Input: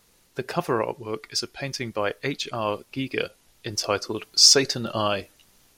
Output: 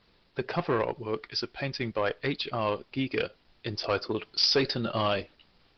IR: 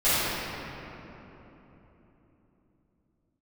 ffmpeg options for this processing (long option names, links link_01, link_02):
-af "aresample=11025,asoftclip=type=tanh:threshold=-18dB,aresample=44100" -ar 48000 -c:a libopus -b:a 16k